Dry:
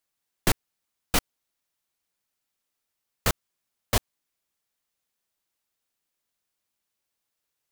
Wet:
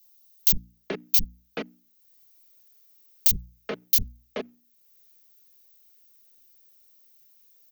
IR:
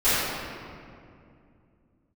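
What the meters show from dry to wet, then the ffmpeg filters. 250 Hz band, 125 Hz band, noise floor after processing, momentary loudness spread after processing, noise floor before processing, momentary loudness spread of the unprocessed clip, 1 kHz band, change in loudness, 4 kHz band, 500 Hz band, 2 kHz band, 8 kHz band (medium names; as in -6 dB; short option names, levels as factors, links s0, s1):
-3.0 dB, -6.5 dB, -65 dBFS, 17 LU, -83 dBFS, 3 LU, -11.0 dB, +4.5 dB, -1.0 dB, -1.0 dB, -7.5 dB, -0.5 dB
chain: -filter_complex "[0:a]bandreject=f=60:t=h:w=6,bandreject=f=120:t=h:w=6,bandreject=f=180:t=h:w=6,bandreject=f=240:t=h:w=6,bandreject=f=300:t=h:w=6,asplit=2[s0][s1];[s1]acrusher=bits=2:mode=log:mix=0:aa=0.000001,volume=0.335[s2];[s0][s2]amix=inputs=2:normalize=0,acrossover=split=330[s3][s4];[s4]acompressor=threshold=0.0891:ratio=3[s5];[s3][s5]amix=inputs=2:normalize=0,acrossover=split=200|2800[s6][s7][s8];[s6]adelay=50[s9];[s7]adelay=430[s10];[s9][s10][s8]amix=inputs=3:normalize=0,asoftclip=type=tanh:threshold=0.141,lowshelf=f=680:t=q:w=1.5:g=9.5,aecho=1:1:4.7:0.51,acompressor=threshold=0.00251:ratio=1.5,firequalizer=gain_entry='entry(680,0);entry(2400,8);entry(6600,14);entry(10000,-23);entry(15000,0)':delay=0.05:min_phase=1,aexciter=amount=14.7:drive=3.2:freq=11000"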